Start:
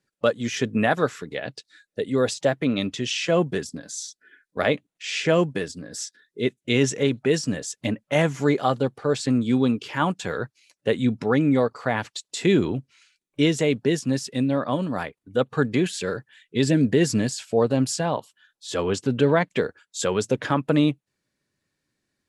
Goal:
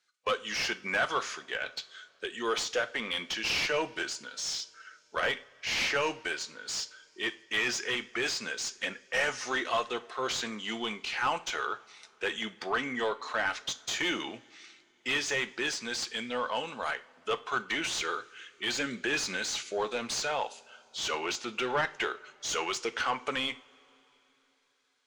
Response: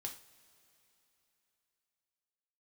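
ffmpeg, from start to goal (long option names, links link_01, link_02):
-filter_complex "[0:a]lowpass=9600,aderivative,asplit=2[link_01][link_02];[link_02]highpass=frequency=720:poles=1,volume=23dB,asoftclip=type=tanh:threshold=-16.5dB[link_03];[link_01][link_03]amix=inputs=2:normalize=0,lowpass=frequency=1900:poles=1,volume=-6dB,asetrate=39205,aresample=44100,asplit=2[link_04][link_05];[1:a]atrim=start_sample=2205,lowpass=8900[link_06];[link_05][link_06]afir=irnorm=-1:irlink=0,volume=-1.5dB[link_07];[link_04][link_07]amix=inputs=2:normalize=0,volume=-2.5dB"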